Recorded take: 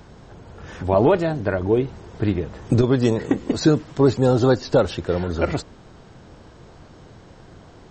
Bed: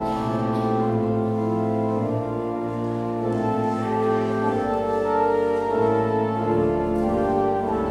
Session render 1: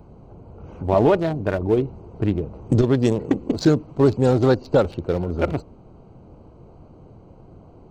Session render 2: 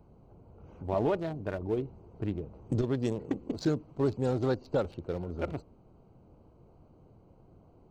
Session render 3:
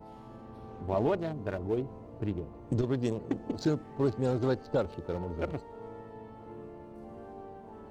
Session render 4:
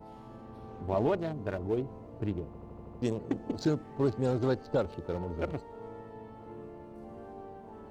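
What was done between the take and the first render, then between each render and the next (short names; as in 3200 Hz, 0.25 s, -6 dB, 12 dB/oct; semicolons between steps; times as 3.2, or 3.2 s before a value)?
Wiener smoothing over 25 samples; high shelf 5800 Hz +6 dB
gain -12 dB
add bed -25 dB
2.46 stutter in place 0.08 s, 7 plays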